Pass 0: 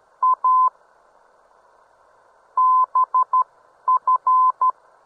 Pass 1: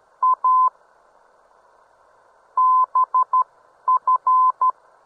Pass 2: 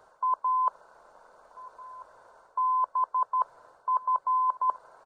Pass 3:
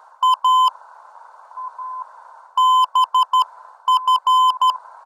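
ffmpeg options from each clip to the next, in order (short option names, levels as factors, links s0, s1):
-af anull
-filter_complex "[0:a]areverse,acompressor=threshold=0.0631:ratio=12,areverse,asplit=2[s0][s1];[s1]adelay=1341,volume=0.141,highshelf=f=4000:g=-30.2[s2];[s0][s2]amix=inputs=2:normalize=0"
-filter_complex "[0:a]asplit=2[s0][s1];[s1]asoftclip=type=tanh:threshold=0.0668,volume=0.562[s2];[s0][s2]amix=inputs=2:normalize=0,highpass=f=920:t=q:w=3.5,asoftclip=type=hard:threshold=0.211,volume=1.19"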